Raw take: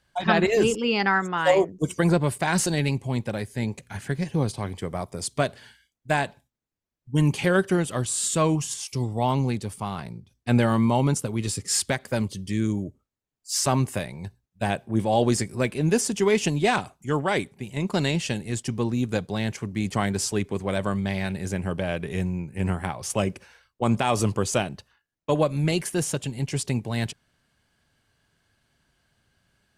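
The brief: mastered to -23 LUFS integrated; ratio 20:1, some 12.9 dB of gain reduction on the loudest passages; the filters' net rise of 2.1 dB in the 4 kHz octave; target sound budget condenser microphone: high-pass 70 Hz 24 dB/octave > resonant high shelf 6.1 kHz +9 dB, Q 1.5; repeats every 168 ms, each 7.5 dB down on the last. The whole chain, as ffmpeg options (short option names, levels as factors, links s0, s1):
-af "equalizer=f=4000:t=o:g=4.5,acompressor=threshold=0.0398:ratio=20,highpass=f=70:w=0.5412,highpass=f=70:w=1.3066,highshelf=f=6100:t=q:w=1.5:g=9,aecho=1:1:168|336|504|672|840:0.422|0.177|0.0744|0.0312|0.0131,volume=2.11"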